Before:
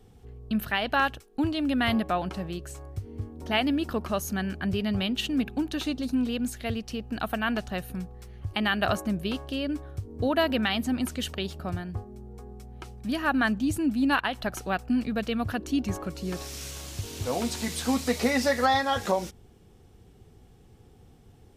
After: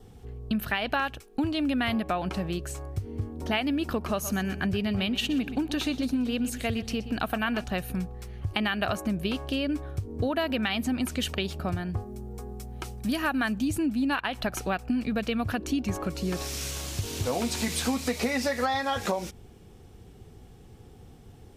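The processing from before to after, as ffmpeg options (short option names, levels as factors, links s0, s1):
-filter_complex "[0:a]asettb=1/sr,asplit=3[s0][s1][s2];[s0]atrim=end=3.964[s3];[s1]atrim=start=3.96:end=7.64,asetpts=PTS-STARTPTS,afade=t=in:d=0.004:c=qsin,afade=t=out:st=3.676:d=0.004:c=qsin,aecho=1:1:123|246|369:0.178|0.0445|0.0111,atrim=end_sample=162288[s4];[s2]atrim=start=7.636[s5];[s3][s4]acrossfade=d=0.004:c1=hsin:c2=qsin[s6];[s6][s5]acrossfade=d=0.004:c1=qsin:c2=hsin,asettb=1/sr,asplit=3[s7][s8][s9];[s7]atrim=end=12.004[s10];[s8]atrim=start=12:end=13.68,asetpts=PTS-STARTPTS,afade=t=in:d=0.004:c=qsin,afade=t=out:st=1.676:d=0.004:c=qsin,highshelf=f=6500:g=9[s11];[s9]atrim=start=13.676[s12];[s10][s11]acrossfade=d=0.004:c1=hsin:c2=qsin[s13];[s13][s12]acrossfade=d=0.004:c1=qsin:c2=hsin,adynamicequalizer=threshold=0.00316:dfrequency=2400:dqfactor=6.4:tfrequency=2400:tqfactor=6.4:attack=5:release=100:ratio=0.375:range=2.5:mode=boostabove:tftype=bell,acompressor=threshold=0.0355:ratio=5,volume=1.68"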